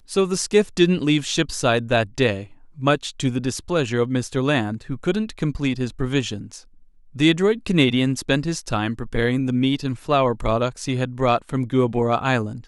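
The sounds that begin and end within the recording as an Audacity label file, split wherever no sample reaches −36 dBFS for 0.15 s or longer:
2.780000	6.610000	sound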